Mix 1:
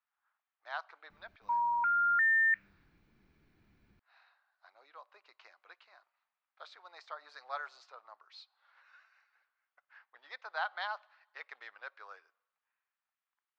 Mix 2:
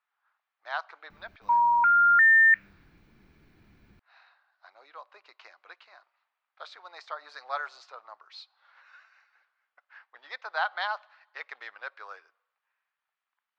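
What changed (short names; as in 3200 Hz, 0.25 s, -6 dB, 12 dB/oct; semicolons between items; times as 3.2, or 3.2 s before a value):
speech +7.0 dB; background +9.0 dB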